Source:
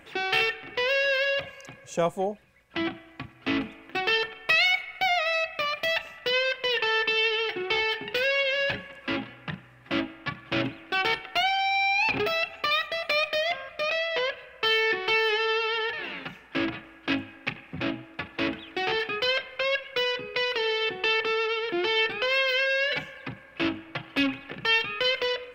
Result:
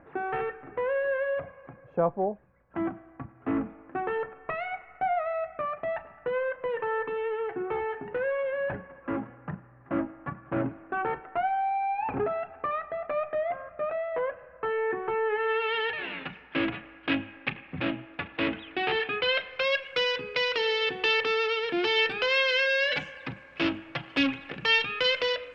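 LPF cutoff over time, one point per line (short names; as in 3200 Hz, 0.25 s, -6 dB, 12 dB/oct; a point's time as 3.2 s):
LPF 24 dB/oct
15.23 s 1400 Hz
15.8 s 3500 Hz
19.25 s 3500 Hz
19.81 s 7600 Hz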